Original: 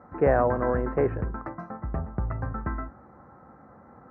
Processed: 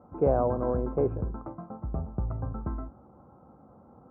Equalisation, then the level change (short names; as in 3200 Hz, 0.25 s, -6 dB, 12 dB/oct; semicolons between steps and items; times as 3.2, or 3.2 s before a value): running mean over 24 samples; -1.5 dB